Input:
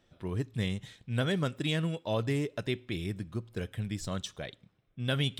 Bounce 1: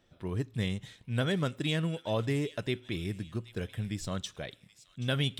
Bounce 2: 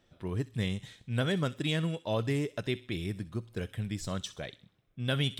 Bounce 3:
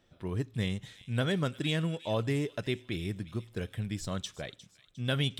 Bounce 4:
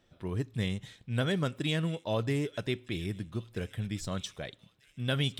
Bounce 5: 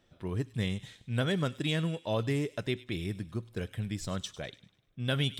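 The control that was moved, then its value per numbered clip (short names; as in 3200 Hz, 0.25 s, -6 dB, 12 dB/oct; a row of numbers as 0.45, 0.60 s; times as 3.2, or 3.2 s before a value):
thin delay, time: 779, 64, 355, 1263, 100 ms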